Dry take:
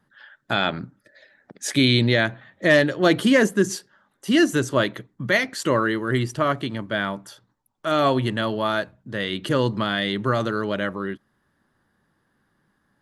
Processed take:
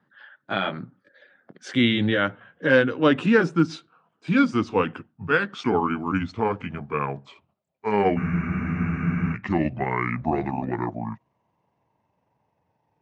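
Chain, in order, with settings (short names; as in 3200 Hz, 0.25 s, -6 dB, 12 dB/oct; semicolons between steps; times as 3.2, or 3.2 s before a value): gliding pitch shift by -11 st starting unshifted; BPF 130–3100 Hz; spectral freeze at 8.19, 1.15 s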